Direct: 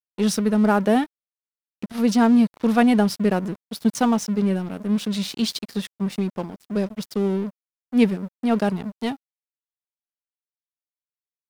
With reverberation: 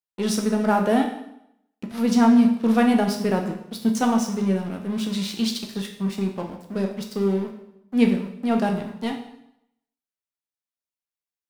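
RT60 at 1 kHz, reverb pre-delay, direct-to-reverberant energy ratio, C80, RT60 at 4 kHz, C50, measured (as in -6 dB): 0.80 s, 5 ms, 2.5 dB, 10.5 dB, 0.75 s, 7.5 dB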